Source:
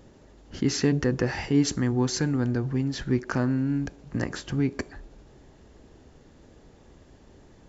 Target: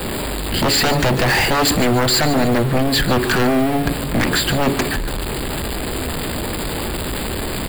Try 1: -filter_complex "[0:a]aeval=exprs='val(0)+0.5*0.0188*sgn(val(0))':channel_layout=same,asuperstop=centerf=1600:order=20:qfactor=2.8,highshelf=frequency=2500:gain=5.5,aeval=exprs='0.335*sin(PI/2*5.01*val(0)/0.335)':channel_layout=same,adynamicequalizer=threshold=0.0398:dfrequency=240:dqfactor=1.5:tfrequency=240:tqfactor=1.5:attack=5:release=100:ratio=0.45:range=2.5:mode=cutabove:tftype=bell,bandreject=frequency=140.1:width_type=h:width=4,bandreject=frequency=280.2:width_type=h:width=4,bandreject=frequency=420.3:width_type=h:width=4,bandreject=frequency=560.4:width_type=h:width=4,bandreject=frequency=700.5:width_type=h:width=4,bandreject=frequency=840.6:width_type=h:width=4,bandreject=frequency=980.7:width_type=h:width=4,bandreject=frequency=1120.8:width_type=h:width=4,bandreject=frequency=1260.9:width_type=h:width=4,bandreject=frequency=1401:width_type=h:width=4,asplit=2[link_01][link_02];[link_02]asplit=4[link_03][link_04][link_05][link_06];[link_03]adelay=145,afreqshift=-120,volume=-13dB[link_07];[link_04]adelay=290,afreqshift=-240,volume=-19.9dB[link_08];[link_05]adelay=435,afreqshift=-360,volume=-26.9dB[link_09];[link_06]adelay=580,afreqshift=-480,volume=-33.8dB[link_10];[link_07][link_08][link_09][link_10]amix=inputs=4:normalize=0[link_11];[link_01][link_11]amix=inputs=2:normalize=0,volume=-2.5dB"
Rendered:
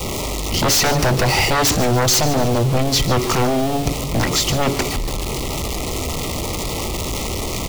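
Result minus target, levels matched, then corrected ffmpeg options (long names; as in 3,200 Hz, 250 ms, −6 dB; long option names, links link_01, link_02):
8,000 Hz band +4.5 dB; 250 Hz band −2.5 dB
-filter_complex "[0:a]aeval=exprs='val(0)+0.5*0.0188*sgn(val(0))':channel_layout=same,asuperstop=centerf=6000:order=20:qfactor=2.8,highshelf=frequency=2500:gain=5.5,aeval=exprs='0.335*sin(PI/2*5.01*val(0)/0.335)':channel_layout=same,adynamicequalizer=threshold=0.0398:dfrequency=100:dqfactor=1.5:tfrequency=100:tqfactor=1.5:attack=5:release=100:ratio=0.45:range=2.5:mode=cutabove:tftype=bell,bandreject=frequency=140.1:width_type=h:width=4,bandreject=frequency=280.2:width_type=h:width=4,bandreject=frequency=420.3:width_type=h:width=4,bandreject=frequency=560.4:width_type=h:width=4,bandreject=frequency=700.5:width_type=h:width=4,bandreject=frequency=840.6:width_type=h:width=4,bandreject=frequency=980.7:width_type=h:width=4,bandreject=frequency=1120.8:width_type=h:width=4,bandreject=frequency=1260.9:width_type=h:width=4,bandreject=frequency=1401:width_type=h:width=4,asplit=2[link_01][link_02];[link_02]asplit=4[link_03][link_04][link_05][link_06];[link_03]adelay=145,afreqshift=-120,volume=-13dB[link_07];[link_04]adelay=290,afreqshift=-240,volume=-19.9dB[link_08];[link_05]adelay=435,afreqshift=-360,volume=-26.9dB[link_09];[link_06]adelay=580,afreqshift=-480,volume=-33.8dB[link_10];[link_07][link_08][link_09][link_10]amix=inputs=4:normalize=0[link_11];[link_01][link_11]amix=inputs=2:normalize=0,volume=-2.5dB"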